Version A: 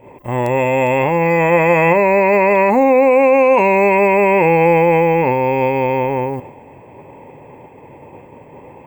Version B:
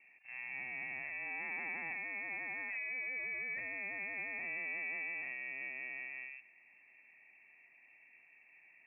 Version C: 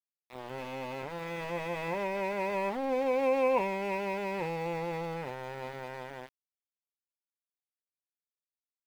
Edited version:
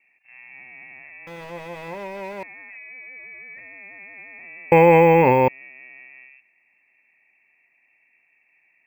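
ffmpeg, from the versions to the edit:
-filter_complex "[1:a]asplit=3[s0][s1][s2];[s0]atrim=end=1.272[s3];[2:a]atrim=start=1.268:end=2.432[s4];[s1]atrim=start=2.428:end=4.722[s5];[0:a]atrim=start=4.718:end=5.482[s6];[s2]atrim=start=5.478[s7];[s3][s4]acrossfade=d=0.004:c1=hsin:c2=hsin[s8];[s8][s5]acrossfade=d=0.004:c1=hsin:c2=hsin[s9];[s9][s6]acrossfade=d=0.004:c1=hsin:c2=hsin[s10];[s10][s7]acrossfade=d=0.004:c1=hsin:c2=hsin"

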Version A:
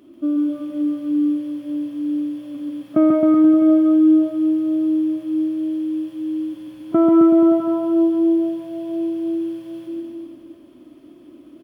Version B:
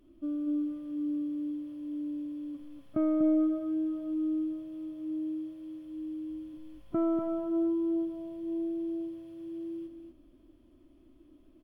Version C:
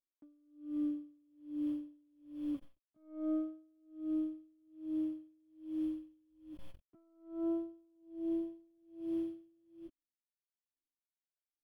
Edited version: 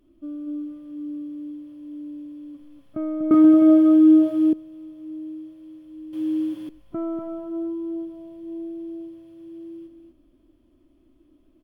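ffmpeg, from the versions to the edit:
-filter_complex "[0:a]asplit=2[s0][s1];[1:a]asplit=3[s2][s3][s4];[s2]atrim=end=3.312[s5];[s0]atrim=start=3.308:end=4.532[s6];[s3]atrim=start=4.528:end=6.132[s7];[s1]atrim=start=6.128:end=6.692[s8];[s4]atrim=start=6.688[s9];[s5][s6]acrossfade=d=0.004:c1=hsin:c2=hsin[s10];[s10][s7]acrossfade=d=0.004:c1=hsin:c2=hsin[s11];[s11][s8]acrossfade=d=0.004:c1=hsin:c2=hsin[s12];[s12][s9]acrossfade=d=0.004:c1=hsin:c2=hsin"

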